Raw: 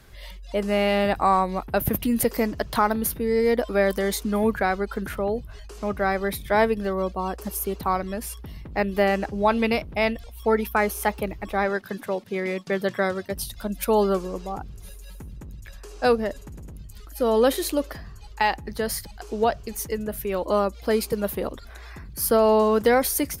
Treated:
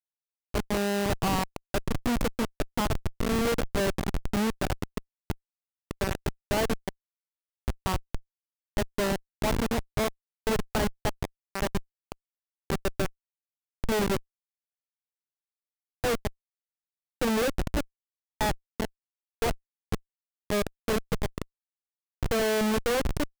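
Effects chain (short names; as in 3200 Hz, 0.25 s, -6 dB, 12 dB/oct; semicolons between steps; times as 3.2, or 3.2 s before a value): LPF 9400 Hz 12 dB/oct; notch 3000 Hz, Q 18; Schmitt trigger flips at -19.5 dBFS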